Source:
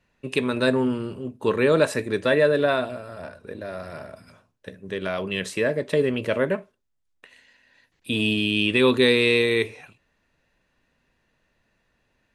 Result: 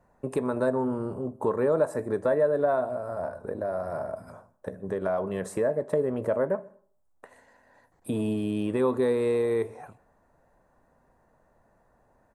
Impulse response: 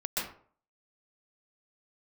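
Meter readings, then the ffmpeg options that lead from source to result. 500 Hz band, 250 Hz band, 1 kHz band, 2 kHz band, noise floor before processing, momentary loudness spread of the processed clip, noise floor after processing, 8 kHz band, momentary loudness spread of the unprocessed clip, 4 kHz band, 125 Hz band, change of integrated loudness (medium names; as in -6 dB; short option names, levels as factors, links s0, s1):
-3.0 dB, -5.0 dB, -1.5 dB, -15.5 dB, -71 dBFS, 10 LU, -67 dBFS, -7.5 dB, 18 LU, under -20 dB, -5.0 dB, -5.5 dB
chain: -filter_complex "[0:a]firequalizer=gain_entry='entry(320,0);entry(730,9);entry(2700,-22);entry(8000,-3)':delay=0.05:min_phase=1,acompressor=threshold=0.0158:ratio=2,asplit=2[s0][s1];[1:a]atrim=start_sample=2205[s2];[s1][s2]afir=irnorm=-1:irlink=0,volume=0.0376[s3];[s0][s3]amix=inputs=2:normalize=0,volume=1.58"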